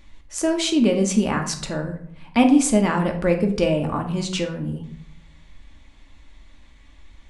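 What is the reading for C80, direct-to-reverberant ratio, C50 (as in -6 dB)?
13.0 dB, 3.0 dB, 9.0 dB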